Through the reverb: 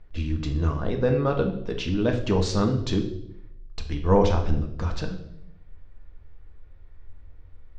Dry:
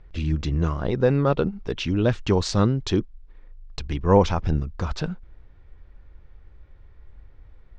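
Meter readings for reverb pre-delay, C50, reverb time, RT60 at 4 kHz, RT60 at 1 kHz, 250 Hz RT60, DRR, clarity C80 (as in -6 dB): 3 ms, 9.0 dB, 0.80 s, 0.70 s, 0.65 s, 0.90 s, 3.5 dB, 12.0 dB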